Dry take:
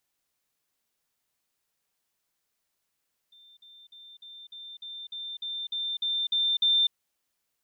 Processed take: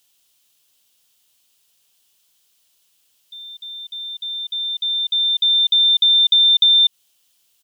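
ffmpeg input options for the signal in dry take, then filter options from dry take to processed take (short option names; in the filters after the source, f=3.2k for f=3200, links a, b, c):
-f lavfi -i "aevalsrc='pow(10,(-52.5+3*floor(t/0.3))/20)*sin(2*PI*3580*t)*clip(min(mod(t,0.3),0.25-mod(t,0.3))/0.005,0,1)':d=3.6:s=44100"
-filter_complex "[0:a]firequalizer=gain_entry='entry(2100,0);entry(3000,14);entry(4200,10)':delay=0.05:min_phase=1,asplit=2[a][b];[b]alimiter=limit=-18dB:level=0:latency=1:release=81,volume=3dB[c];[a][c]amix=inputs=2:normalize=0,acompressor=threshold=-11dB:ratio=6"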